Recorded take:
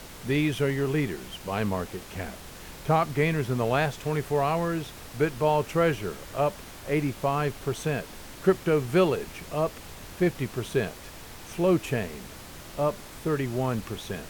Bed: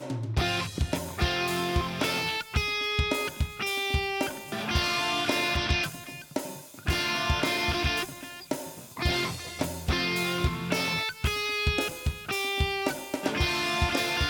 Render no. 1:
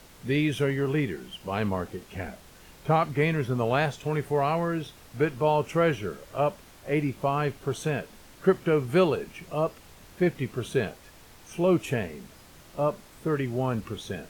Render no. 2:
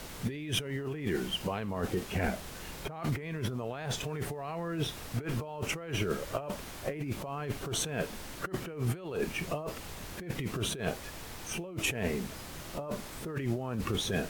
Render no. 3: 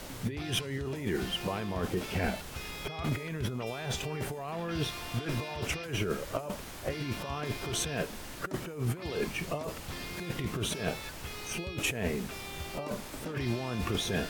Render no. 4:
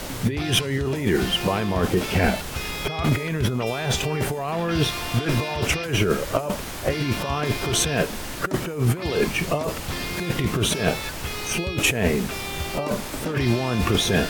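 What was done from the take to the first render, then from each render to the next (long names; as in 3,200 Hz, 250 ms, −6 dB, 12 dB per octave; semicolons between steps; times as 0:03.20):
noise reduction from a noise print 8 dB
compressor whose output falls as the input rises −35 dBFS, ratio −1
mix in bed −15 dB
level +11 dB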